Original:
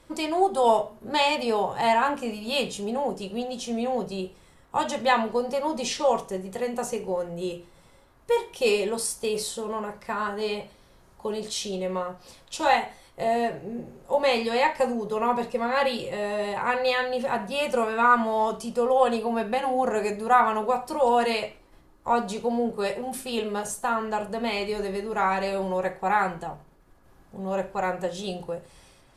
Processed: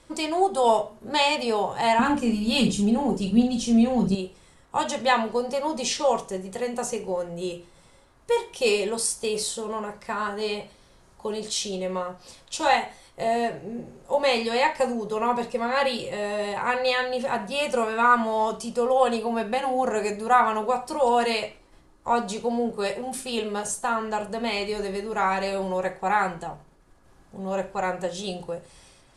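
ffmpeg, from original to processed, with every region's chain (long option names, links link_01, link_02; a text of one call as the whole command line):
ffmpeg -i in.wav -filter_complex "[0:a]asettb=1/sr,asplit=3[link_01][link_02][link_03];[link_01]atrim=end=1.994[link_04];[link_02]atrim=start=1.99:end=4.15,asetpts=PTS-STARTPTS,afade=type=in:duration=0.004:curve=qsin,afade=type=out:start_time=2.156:duration=0.004:curve=qsin,lowshelf=frequency=360:width_type=q:width=1.5:gain=9.5,asplit=2[link_05][link_06];[link_06]adelay=44,volume=-7.5dB[link_07];[link_05][link_07]amix=inputs=2:normalize=0,atrim=end_sample=95256,aphaser=in_gain=1:out_gain=1:delay=3:decay=0.33:speed=1.4:type=triangular[link_08];[link_03]atrim=start=4.146[link_09];[link_04][link_08]acrossfade=duration=0.004:curve1=hsin:curve2=qsin[link_10];[link_10][link_09]acrossfade=duration=0.004:curve1=qsin:curve2=hsin,lowpass=frequency=10000:width=0.5412,lowpass=frequency=10000:width=1.3066,highshelf=frequency=4500:gain=6" out.wav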